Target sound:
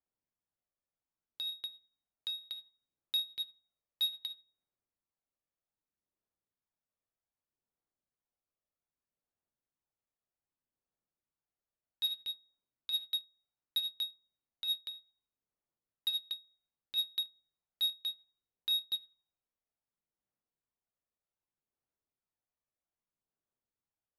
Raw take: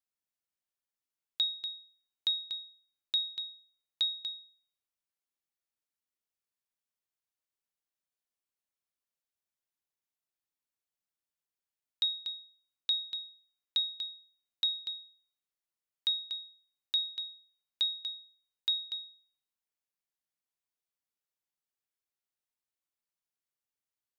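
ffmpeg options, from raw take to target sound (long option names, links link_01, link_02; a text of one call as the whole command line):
ffmpeg -i in.wav -af "volume=32.5dB,asoftclip=hard,volume=-32.5dB,aphaser=in_gain=1:out_gain=1:delay=1.7:decay=0.3:speed=0.64:type=sinusoidal,adynamicsmooth=sensitivity=7:basefreq=1200,volume=4.5dB" out.wav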